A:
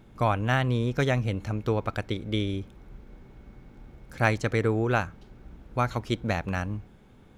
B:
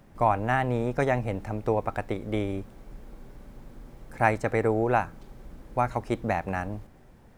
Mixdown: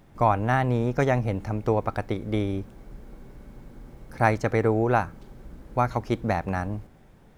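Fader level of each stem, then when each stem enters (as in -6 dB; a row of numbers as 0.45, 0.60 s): -5.5, -1.0 dB; 0.00, 0.00 s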